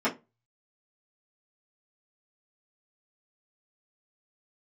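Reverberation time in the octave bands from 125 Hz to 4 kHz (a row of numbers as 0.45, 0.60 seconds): 0.60, 0.25, 0.25, 0.20, 0.20, 0.15 seconds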